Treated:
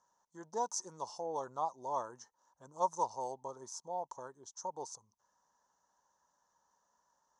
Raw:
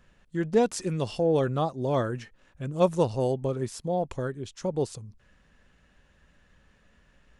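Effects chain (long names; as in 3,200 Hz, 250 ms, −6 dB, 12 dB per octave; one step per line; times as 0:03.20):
pair of resonant band-passes 2,400 Hz, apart 2.7 octaves
level +3.5 dB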